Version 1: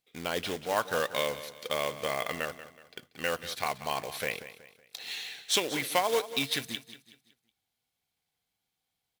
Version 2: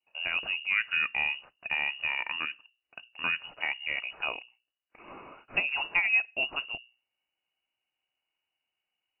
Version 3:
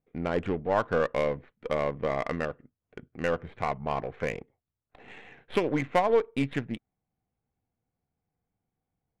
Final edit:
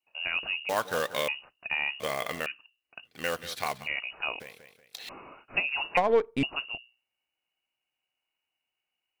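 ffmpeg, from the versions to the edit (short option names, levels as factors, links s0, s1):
-filter_complex "[0:a]asplit=4[s0][s1][s2][s3];[1:a]asplit=6[s4][s5][s6][s7][s8][s9];[s4]atrim=end=0.692[s10];[s0]atrim=start=0.688:end=1.282[s11];[s5]atrim=start=1.278:end=2.002[s12];[s1]atrim=start=1.998:end=2.462[s13];[s6]atrim=start=2.458:end=3.09[s14];[s2]atrim=start=3.03:end=3.88[s15];[s7]atrim=start=3.82:end=4.402[s16];[s3]atrim=start=4.398:end=5.092[s17];[s8]atrim=start=5.088:end=5.972[s18];[2:a]atrim=start=5.968:end=6.432[s19];[s9]atrim=start=6.428[s20];[s10][s11]acrossfade=d=0.004:c1=hsin:c2=hsin[s21];[s21][s12]acrossfade=d=0.004:c1=hsin:c2=hsin[s22];[s22][s13]acrossfade=d=0.004:c1=hsin:c2=hsin[s23];[s23][s14]acrossfade=d=0.004:c1=hsin:c2=hsin[s24];[s24][s15]acrossfade=d=0.06:c1=tri:c2=tri[s25];[s25][s16]acrossfade=d=0.06:c1=tri:c2=tri[s26];[s26][s17]acrossfade=d=0.004:c1=hsin:c2=hsin[s27];[s27][s18]acrossfade=d=0.004:c1=hsin:c2=hsin[s28];[s28][s19]acrossfade=d=0.004:c1=hsin:c2=hsin[s29];[s29][s20]acrossfade=d=0.004:c1=hsin:c2=hsin"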